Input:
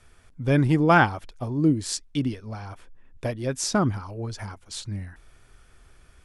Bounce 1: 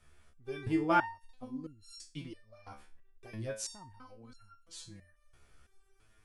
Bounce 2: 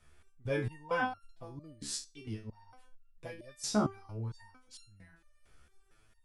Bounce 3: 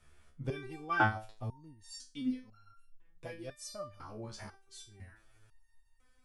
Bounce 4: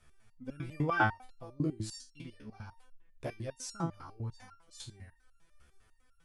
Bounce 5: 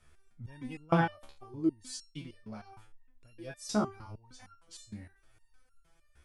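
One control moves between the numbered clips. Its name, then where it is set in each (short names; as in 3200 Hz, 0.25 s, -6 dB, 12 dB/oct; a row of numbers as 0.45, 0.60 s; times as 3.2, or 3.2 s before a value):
stepped resonator, rate: 3, 4.4, 2, 10, 6.5 Hz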